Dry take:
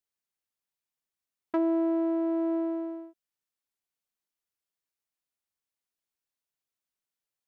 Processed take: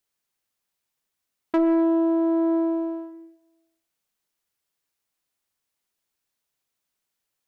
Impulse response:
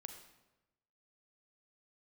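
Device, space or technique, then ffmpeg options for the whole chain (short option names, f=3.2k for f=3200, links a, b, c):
saturated reverb return: -filter_complex "[0:a]asplit=2[a][b];[1:a]atrim=start_sample=2205[c];[b][c]afir=irnorm=-1:irlink=0,asoftclip=type=tanh:threshold=-34.5dB,volume=6dB[d];[a][d]amix=inputs=2:normalize=0,volume=2.5dB"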